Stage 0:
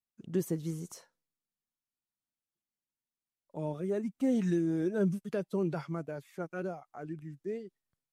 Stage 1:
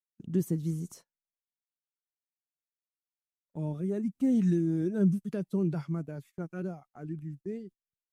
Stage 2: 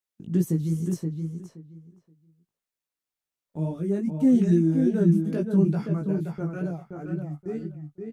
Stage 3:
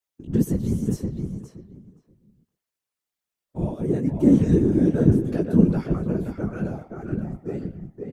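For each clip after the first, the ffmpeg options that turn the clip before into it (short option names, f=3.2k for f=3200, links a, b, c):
-af "agate=range=-22dB:threshold=-51dB:ratio=16:detection=peak,firequalizer=gain_entry='entry(190,0);entry(510,-11);entry(9400,-6)':delay=0.05:min_phase=1,volume=5.5dB"
-filter_complex "[0:a]flanger=delay=17:depth=3.5:speed=2.4,asplit=2[a][b];[b]adelay=524,lowpass=f=2.6k:p=1,volume=-5dB,asplit=2[c][d];[d]adelay=524,lowpass=f=2.6k:p=1,volume=0.18,asplit=2[e][f];[f]adelay=524,lowpass=f=2.6k:p=1,volume=0.18[g];[c][e][g]amix=inputs=3:normalize=0[h];[a][h]amix=inputs=2:normalize=0,volume=8dB"
-filter_complex "[0:a]asplit=2[a][b];[b]adelay=120,highpass=300,lowpass=3.4k,asoftclip=type=hard:threshold=-19dB,volume=-11dB[c];[a][c]amix=inputs=2:normalize=0,afftfilt=real='hypot(re,im)*cos(2*PI*random(0))':imag='hypot(re,im)*sin(2*PI*random(1))':win_size=512:overlap=0.75,volume=8dB"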